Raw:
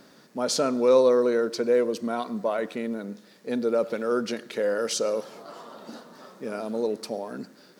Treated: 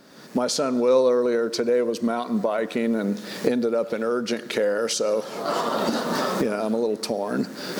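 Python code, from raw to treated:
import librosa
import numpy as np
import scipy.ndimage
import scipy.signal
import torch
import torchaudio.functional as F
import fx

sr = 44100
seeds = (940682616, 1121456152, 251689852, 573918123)

y = fx.recorder_agc(x, sr, target_db=-15.0, rise_db_per_s=44.0, max_gain_db=30)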